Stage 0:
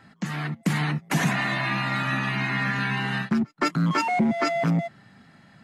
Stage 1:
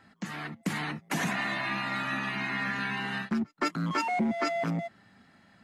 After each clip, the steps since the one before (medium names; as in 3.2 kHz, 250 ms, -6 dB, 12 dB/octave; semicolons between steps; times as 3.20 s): peaking EQ 140 Hz -13.5 dB 0.33 oct; trim -5 dB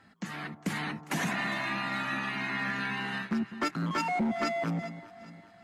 one-sided clip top -23 dBFS; echo whose repeats swap between lows and highs 203 ms, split 1.1 kHz, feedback 67%, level -13 dB; trim -1 dB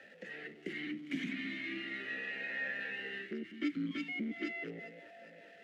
jump at every zero crossing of -41.5 dBFS; valve stage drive 23 dB, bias 0.6; talking filter e-i 0.38 Hz; trim +6 dB